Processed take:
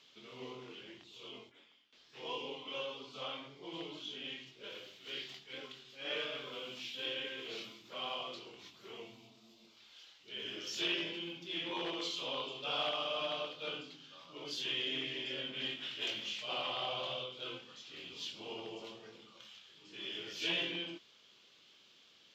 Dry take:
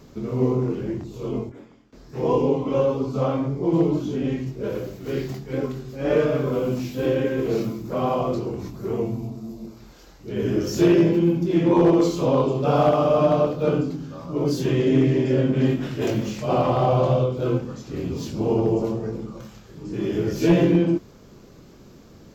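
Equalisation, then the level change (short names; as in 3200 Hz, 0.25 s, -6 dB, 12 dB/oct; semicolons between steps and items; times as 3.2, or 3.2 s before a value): band-pass 3200 Hz, Q 4.6; +6.0 dB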